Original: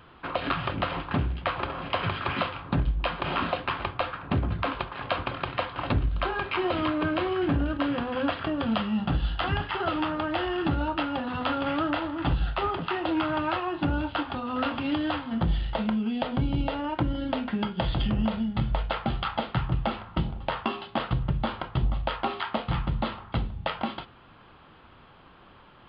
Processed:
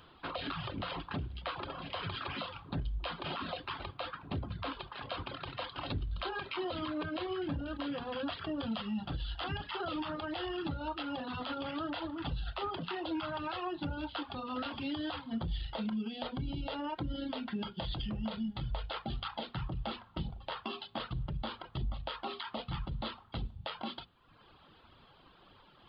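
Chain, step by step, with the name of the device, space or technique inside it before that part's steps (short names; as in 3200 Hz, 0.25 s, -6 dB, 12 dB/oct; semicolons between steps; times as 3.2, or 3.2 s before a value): over-bright horn tweeter (resonant high shelf 3000 Hz +6.5 dB, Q 1.5; limiter -22.5 dBFS, peak gain reduction 10 dB); reverb removal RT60 0.91 s; notches 60/120/180/240 Hz; 5.64–6.29 dynamic EQ 4300 Hz, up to +4 dB, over -53 dBFS, Q 0.83; gain -5 dB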